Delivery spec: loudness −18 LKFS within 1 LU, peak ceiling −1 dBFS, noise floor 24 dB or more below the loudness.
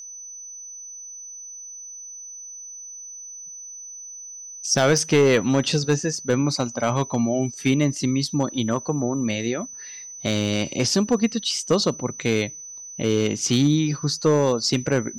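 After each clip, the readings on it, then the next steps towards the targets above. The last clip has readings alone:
share of clipped samples 0.4%; peaks flattened at −11.0 dBFS; interfering tone 6,000 Hz; level of the tone −36 dBFS; integrated loudness −22.0 LKFS; sample peak −11.0 dBFS; target loudness −18.0 LKFS
→ clipped peaks rebuilt −11 dBFS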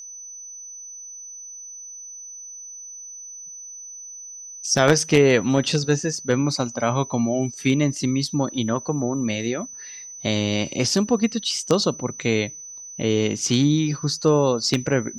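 share of clipped samples 0.0%; interfering tone 6,000 Hz; level of the tone −36 dBFS
→ notch filter 6,000 Hz, Q 30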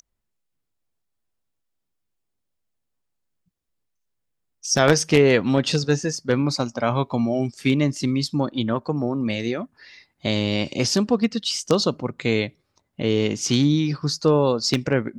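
interfering tone none found; integrated loudness −22.0 LKFS; sample peak −2.0 dBFS; target loudness −18.0 LKFS
→ level +4 dB
brickwall limiter −1 dBFS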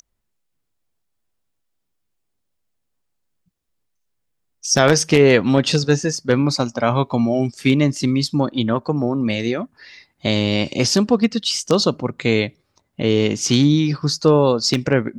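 integrated loudness −18.0 LKFS; sample peak −1.0 dBFS; background noise floor −73 dBFS

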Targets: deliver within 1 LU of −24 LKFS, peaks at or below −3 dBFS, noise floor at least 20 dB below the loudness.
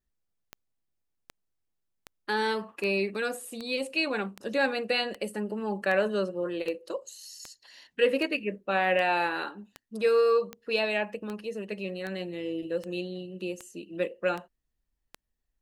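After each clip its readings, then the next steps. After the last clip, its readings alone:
number of clicks 20; integrated loudness −29.5 LKFS; sample peak −12.5 dBFS; target loudness −24.0 LKFS
→ click removal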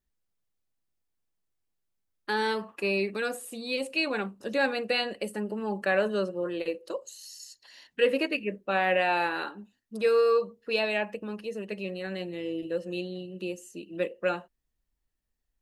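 number of clicks 0; integrated loudness −29.5 LKFS; sample peak −12.5 dBFS; target loudness −24.0 LKFS
→ level +5.5 dB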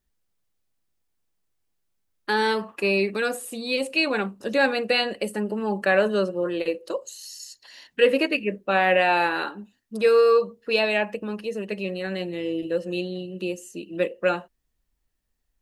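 integrated loudness −24.0 LKFS; sample peak −7.0 dBFS; background noise floor −74 dBFS

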